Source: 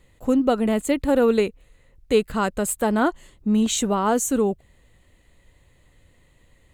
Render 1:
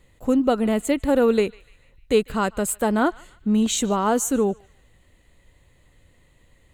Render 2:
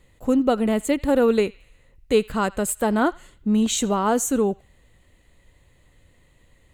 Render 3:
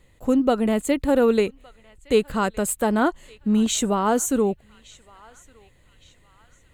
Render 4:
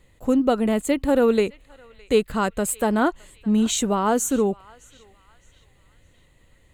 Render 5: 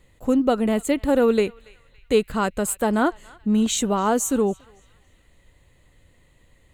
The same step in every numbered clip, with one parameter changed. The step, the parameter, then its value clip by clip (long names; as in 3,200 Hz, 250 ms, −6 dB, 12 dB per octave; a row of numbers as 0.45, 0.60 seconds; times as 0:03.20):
feedback echo with a band-pass in the loop, delay time: 148, 83, 1,164, 613, 282 milliseconds